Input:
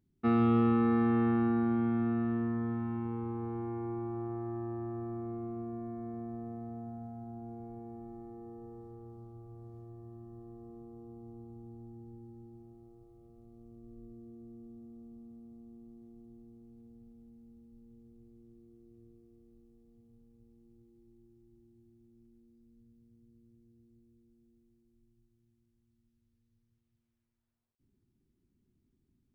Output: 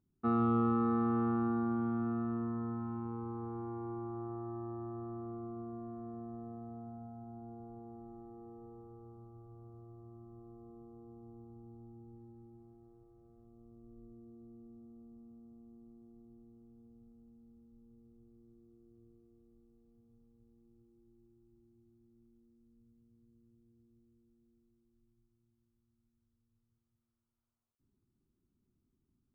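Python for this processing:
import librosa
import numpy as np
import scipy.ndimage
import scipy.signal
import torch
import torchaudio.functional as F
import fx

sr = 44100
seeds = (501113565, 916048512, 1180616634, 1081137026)

y = fx.high_shelf_res(x, sr, hz=1600.0, db=-6.5, q=3.0)
y = fx.running_max(y, sr, window=3, at=(12.14, 13.47))
y = F.gain(torch.from_numpy(y), -4.5).numpy()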